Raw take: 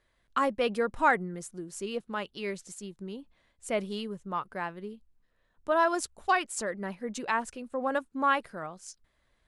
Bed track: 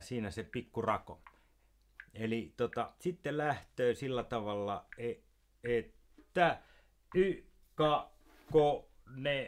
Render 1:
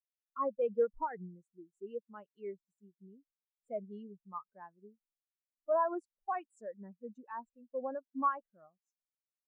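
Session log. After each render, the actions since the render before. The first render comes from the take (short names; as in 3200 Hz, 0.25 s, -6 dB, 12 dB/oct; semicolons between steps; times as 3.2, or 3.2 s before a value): limiter -20.5 dBFS, peak gain reduction 9.5 dB; spectral expander 2.5:1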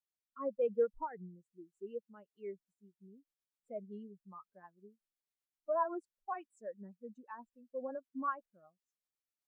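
rotary speaker horn 1 Hz, later 8 Hz, at 2.17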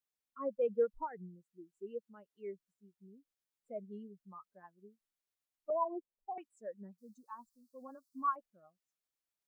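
5.7–6.38 Chebyshev low-pass 1000 Hz, order 10; 6.98–8.36 EQ curve 130 Hz 0 dB, 390 Hz -8 dB, 570 Hz -14 dB, 1200 Hz +5 dB, 2200 Hz -24 dB, 4400 Hz +12 dB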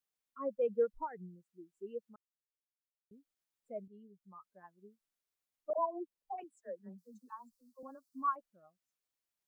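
2.16–3.11 mute; 3.88–4.62 fade in, from -12.5 dB; 5.73–7.83 dispersion lows, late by 66 ms, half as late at 510 Hz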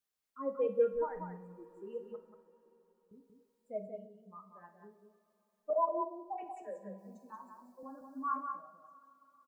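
echo 0.184 s -6 dB; two-slope reverb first 0.47 s, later 4.6 s, from -22 dB, DRR 4.5 dB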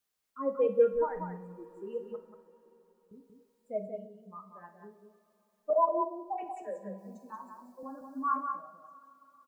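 gain +5 dB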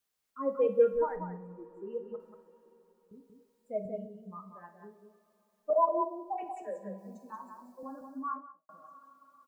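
1.16–2.2 high shelf 2300 Hz -10.5 dB; 3.85–4.55 low shelf 230 Hz +10 dB; 7.99–8.69 studio fade out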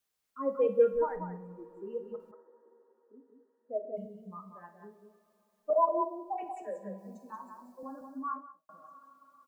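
2.31–3.97 brick-wall FIR band-pass 230–2000 Hz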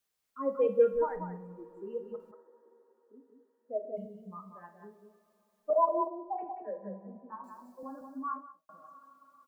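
6.07–7.44 LPF 1600 Hz 24 dB/oct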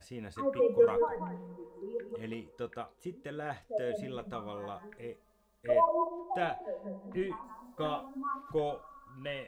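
add bed track -5 dB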